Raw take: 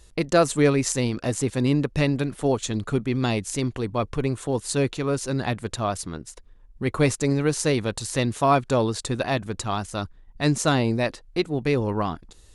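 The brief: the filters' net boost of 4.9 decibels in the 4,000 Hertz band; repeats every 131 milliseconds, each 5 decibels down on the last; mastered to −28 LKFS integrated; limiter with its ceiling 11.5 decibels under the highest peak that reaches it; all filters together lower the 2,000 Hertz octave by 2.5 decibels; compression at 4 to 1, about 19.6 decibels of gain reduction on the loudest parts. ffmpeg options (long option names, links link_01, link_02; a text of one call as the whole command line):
ffmpeg -i in.wav -af "equalizer=frequency=2000:width_type=o:gain=-5.5,equalizer=frequency=4000:width_type=o:gain=7,acompressor=threshold=-39dB:ratio=4,alimiter=level_in=6.5dB:limit=-24dB:level=0:latency=1,volume=-6.5dB,aecho=1:1:131|262|393|524|655|786|917:0.562|0.315|0.176|0.0988|0.0553|0.031|0.0173,volume=12dB" out.wav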